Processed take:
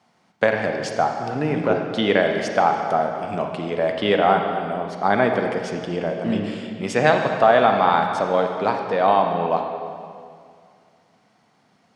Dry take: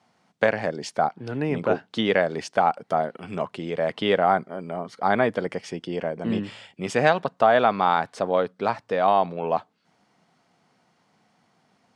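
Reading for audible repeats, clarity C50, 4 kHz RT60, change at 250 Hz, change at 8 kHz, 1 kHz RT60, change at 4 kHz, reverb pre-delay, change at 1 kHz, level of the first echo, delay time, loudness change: no echo audible, 4.0 dB, 2.0 s, +4.0 dB, can't be measured, 2.3 s, +3.5 dB, 31 ms, +3.5 dB, no echo audible, no echo audible, +3.5 dB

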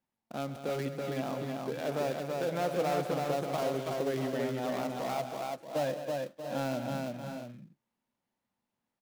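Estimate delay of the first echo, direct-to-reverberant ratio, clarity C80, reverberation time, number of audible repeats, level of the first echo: 134 ms, no reverb audible, no reverb audible, no reverb audible, 5, −14.0 dB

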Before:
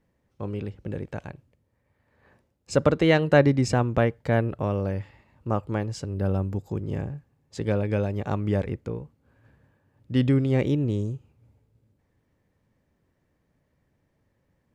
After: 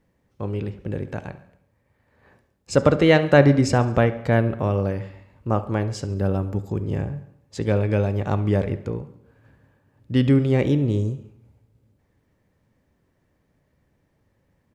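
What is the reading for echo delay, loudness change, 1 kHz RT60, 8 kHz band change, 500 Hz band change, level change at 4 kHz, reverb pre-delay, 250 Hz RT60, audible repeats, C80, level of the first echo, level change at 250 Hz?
70 ms, +4.0 dB, 0.70 s, +3.5 dB, +4.0 dB, +3.5 dB, 6 ms, 0.65 s, 4, 16.5 dB, −18.5 dB, +4.0 dB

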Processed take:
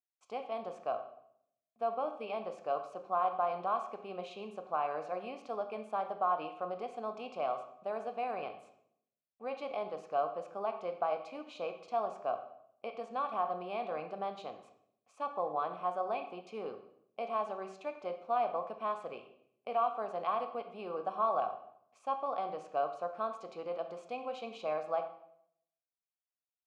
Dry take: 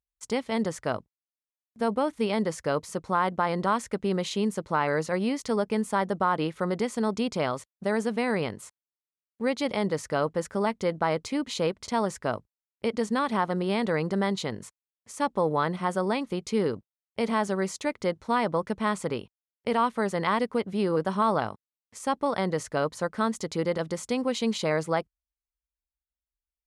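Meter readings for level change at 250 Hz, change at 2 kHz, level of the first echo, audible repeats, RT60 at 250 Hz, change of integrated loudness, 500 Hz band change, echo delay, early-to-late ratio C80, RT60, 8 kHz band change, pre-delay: −21.5 dB, −16.0 dB, no echo audible, no echo audible, 0.85 s, −9.0 dB, −9.0 dB, no echo audible, 12.0 dB, 0.70 s, below −25 dB, 15 ms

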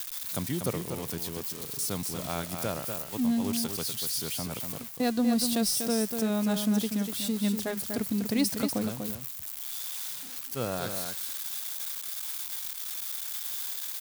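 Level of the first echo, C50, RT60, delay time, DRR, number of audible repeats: −6.5 dB, no reverb audible, no reverb audible, 243 ms, no reverb audible, 1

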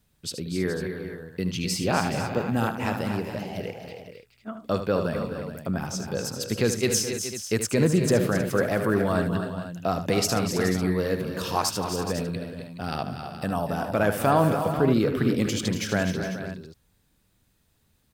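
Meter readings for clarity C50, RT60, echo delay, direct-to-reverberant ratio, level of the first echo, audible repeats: no reverb audible, no reverb audible, 76 ms, no reverb audible, −10.0 dB, 5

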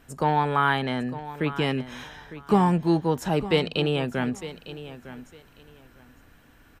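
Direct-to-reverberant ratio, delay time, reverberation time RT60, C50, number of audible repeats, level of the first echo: no reverb audible, 905 ms, no reverb audible, no reverb audible, 2, −14.5 dB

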